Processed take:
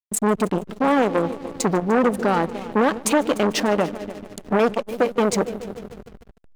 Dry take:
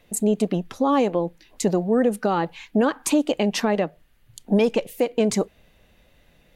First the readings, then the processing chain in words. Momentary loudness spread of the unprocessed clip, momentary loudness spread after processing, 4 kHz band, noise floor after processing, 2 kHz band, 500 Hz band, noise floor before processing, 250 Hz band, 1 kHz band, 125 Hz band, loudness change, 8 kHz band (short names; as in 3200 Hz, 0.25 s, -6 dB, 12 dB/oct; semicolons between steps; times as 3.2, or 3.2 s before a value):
6 LU, 14 LU, +1.5 dB, -49 dBFS, +5.5 dB, +1.5 dB, -59 dBFS, 0.0 dB, +4.5 dB, 0.0 dB, +1.5 dB, +2.5 dB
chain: multi-head echo 0.148 s, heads first and second, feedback 66%, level -17 dB; backlash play -30.5 dBFS; core saturation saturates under 910 Hz; gain +4.5 dB